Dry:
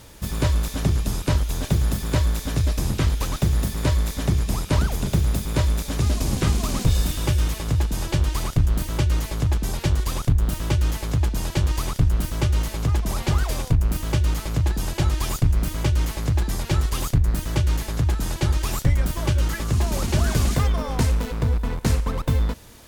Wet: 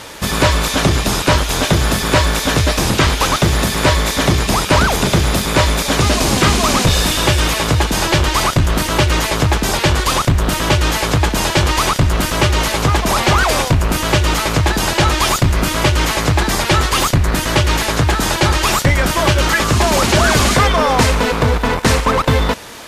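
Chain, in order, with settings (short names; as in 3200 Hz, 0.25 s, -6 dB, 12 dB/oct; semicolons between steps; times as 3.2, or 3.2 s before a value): in parallel at -8 dB: requantised 6-bit, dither none; on the sum: overdrive pedal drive 22 dB, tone 3100 Hz, clips at -5.5 dBFS; gain +4 dB; MP3 56 kbps 32000 Hz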